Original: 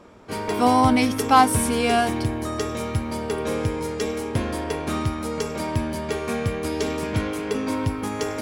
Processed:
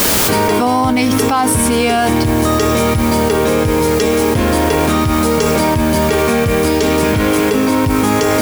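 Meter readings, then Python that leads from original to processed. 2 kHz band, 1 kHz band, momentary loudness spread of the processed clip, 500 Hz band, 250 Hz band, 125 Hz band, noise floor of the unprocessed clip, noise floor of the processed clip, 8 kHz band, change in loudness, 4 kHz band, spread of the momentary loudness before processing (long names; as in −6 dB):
+10.5 dB, +6.5 dB, 1 LU, +12.0 dB, +11.0 dB, +9.5 dB, −30 dBFS, −14 dBFS, +13.0 dB, +10.0 dB, +11.5 dB, 10 LU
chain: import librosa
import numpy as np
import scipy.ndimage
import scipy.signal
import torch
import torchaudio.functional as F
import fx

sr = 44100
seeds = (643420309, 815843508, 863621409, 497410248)

p1 = fx.quant_dither(x, sr, seeds[0], bits=6, dither='triangular')
p2 = x + F.gain(torch.from_numpy(p1), -3.0).numpy()
p3 = fx.env_flatten(p2, sr, amount_pct=100)
y = F.gain(torch.from_numpy(p3), -6.0).numpy()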